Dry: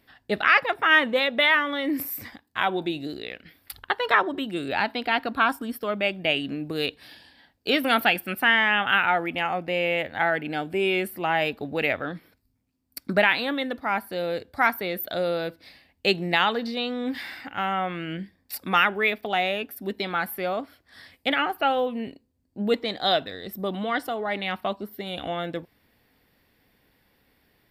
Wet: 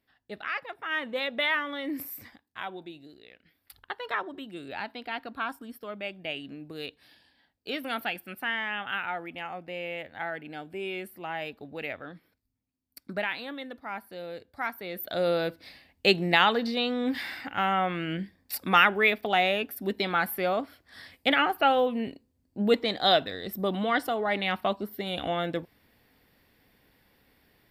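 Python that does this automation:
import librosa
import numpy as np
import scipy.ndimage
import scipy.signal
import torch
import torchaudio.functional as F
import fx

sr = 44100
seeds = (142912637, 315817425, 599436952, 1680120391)

y = fx.gain(x, sr, db=fx.line((0.85, -14.5), (1.25, -7.0), (2.08, -7.0), (3.17, -18.0), (3.82, -11.0), (14.75, -11.0), (15.28, 0.5)))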